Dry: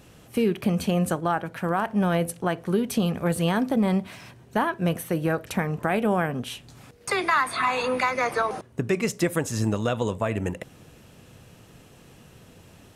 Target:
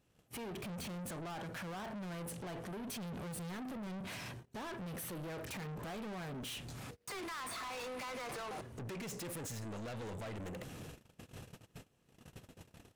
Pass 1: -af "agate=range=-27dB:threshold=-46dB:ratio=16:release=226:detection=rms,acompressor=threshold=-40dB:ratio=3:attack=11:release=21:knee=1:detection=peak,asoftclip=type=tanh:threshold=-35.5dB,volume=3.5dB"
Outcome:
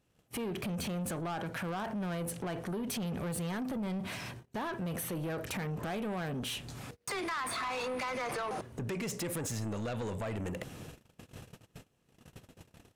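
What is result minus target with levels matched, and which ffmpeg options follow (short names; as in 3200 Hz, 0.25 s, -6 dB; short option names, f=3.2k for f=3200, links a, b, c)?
soft clip: distortion -6 dB
-af "agate=range=-27dB:threshold=-46dB:ratio=16:release=226:detection=rms,acompressor=threshold=-40dB:ratio=3:attack=11:release=21:knee=1:detection=peak,asoftclip=type=tanh:threshold=-45.5dB,volume=3.5dB"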